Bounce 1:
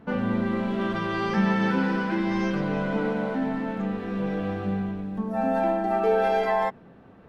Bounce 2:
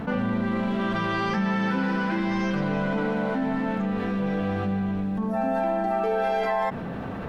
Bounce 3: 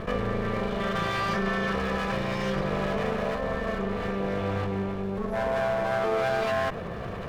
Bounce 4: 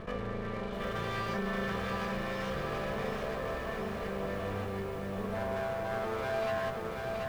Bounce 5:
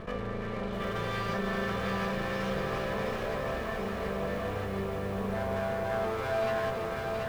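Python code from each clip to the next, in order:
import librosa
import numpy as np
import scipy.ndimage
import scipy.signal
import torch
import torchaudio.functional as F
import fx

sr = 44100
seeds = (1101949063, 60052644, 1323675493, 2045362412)

y1 = fx.peak_eq(x, sr, hz=370.0, db=-4.5, octaves=0.64)
y1 = fx.env_flatten(y1, sr, amount_pct=70)
y1 = F.gain(torch.from_numpy(y1), -3.5).numpy()
y2 = fx.lower_of_two(y1, sr, delay_ms=1.7)
y3 = fx.echo_crushed(y2, sr, ms=730, feedback_pct=55, bits=8, wet_db=-3.5)
y3 = F.gain(torch.from_numpy(y3), -8.5).numpy()
y4 = fx.echo_split(y3, sr, split_hz=1100.0, low_ms=492, high_ms=331, feedback_pct=52, wet_db=-7.5)
y4 = F.gain(torch.from_numpy(y4), 1.5).numpy()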